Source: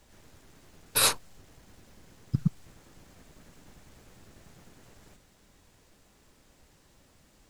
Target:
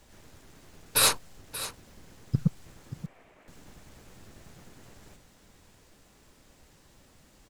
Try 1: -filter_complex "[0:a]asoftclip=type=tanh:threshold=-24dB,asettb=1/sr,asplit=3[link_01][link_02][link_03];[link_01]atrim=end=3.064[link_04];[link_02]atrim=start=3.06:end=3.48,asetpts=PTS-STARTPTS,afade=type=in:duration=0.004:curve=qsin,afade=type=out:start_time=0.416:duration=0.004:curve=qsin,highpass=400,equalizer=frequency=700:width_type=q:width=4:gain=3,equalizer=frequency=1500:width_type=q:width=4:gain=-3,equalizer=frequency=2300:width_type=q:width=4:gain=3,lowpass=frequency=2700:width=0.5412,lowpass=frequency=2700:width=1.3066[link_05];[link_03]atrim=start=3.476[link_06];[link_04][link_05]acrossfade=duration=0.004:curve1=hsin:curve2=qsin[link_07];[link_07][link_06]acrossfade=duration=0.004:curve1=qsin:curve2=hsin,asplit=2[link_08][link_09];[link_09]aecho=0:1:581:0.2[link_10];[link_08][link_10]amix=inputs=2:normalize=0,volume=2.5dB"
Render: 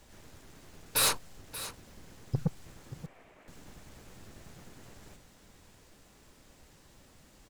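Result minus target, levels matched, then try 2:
soft clipping: distortion +12 dB
-filter_complex "[0:a]asoftclip=type=tanh:threshold=-13.5dB,asettb=1/sr,asplit=3[link_01][link_02][link_03];[link_01]atrim=end=3.064[link_04];[link_02]atrim=start=3.06:end=3.48,asetpts=PTS-STARTPTS,afade=type=in:duration=0.004:curve=qsin,afade=type=out:start_time=0.416:duration=0.004:curve=qsin,highpass=400,equalizer=frequency=700:width_type=q:width=4:gain=3,equalizer=frequency=1500:width_type=q:width=4:gain=-3,equalizer=frequency=2300:width_type=q:width=4:gain=3,lowpass=frequency=2700:width=0.5412,lowpass=frequency=2700:width=1.3066[link_05];[link_03]atrim=start=3.476[link_06];[link_04][link_05]acrossfade=duration=0.004:curve1=hsin:curve2=qsin[link_07];[link_07][link_06]acrossfade=duration=0.004:curve1=qsin:curve2=hsin,asplit=2[link_08][link_09];[link_09]aecho=0:1:581:0.2[link_10];[link_08][link_10]amix=inputs=2:normalize=0,volume=2.5dB"

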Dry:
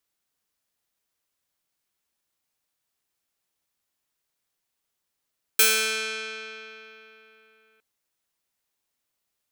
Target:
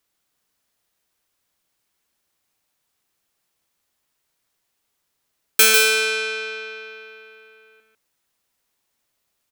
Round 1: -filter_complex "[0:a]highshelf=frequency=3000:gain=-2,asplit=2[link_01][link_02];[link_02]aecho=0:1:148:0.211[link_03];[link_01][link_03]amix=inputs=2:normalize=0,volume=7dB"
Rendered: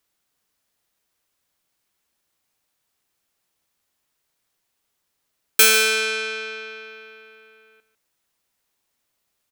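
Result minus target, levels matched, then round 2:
echo-to-direct −8 dB
-filter_complex "[0:a]highshelf=frequency=3000:gain=-2,asplit=2[link_01][link_02];[link_02]aecho=0:1:148:0.531[link_03];[link_01][link_03]amix=inputs=2:normalize=0,volume=7dB"

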